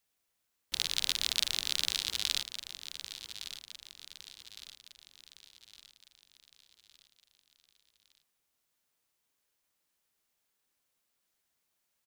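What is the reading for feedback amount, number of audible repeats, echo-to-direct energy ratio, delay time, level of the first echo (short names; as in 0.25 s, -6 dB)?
47%, 4, -10.5 dB, 1.161 s, -11.5 dB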